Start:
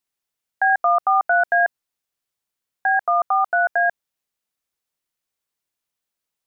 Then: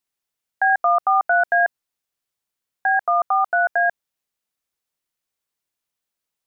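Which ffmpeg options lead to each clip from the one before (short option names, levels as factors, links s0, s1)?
-af anull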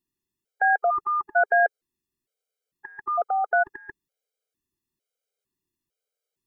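-af "lowshelf=f=590:t=q:w=1.5:g=10,afftfilt=real='re*gt(sin(2*PI*1.1*pts/sr)*(1-2*mod(floor(b*sr/1024/410),2)),0)':imag='im*gt(sin(2*PI*1.1*pts/sr)*(1-2*mod(floor(b*sr/1024/410),2)),0)':win_size=1024:overlap=0.75,volume=0.841"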